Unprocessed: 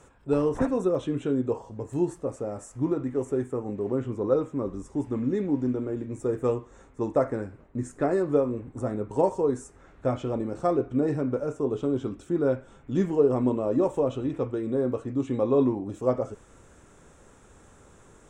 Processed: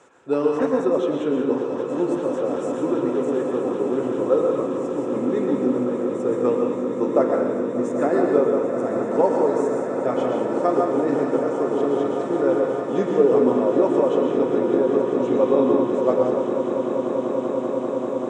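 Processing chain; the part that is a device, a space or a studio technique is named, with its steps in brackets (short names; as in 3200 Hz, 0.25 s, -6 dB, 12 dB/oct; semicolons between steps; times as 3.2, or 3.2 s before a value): supermarket ceiling speaker (BPF 290–6100 Hz; reverb RT60 0.90 s, pre-delay 0.109 s, DRR 2 dB); swelling echo 0.195 s, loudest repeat 8, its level -13 dB; gain +4 dB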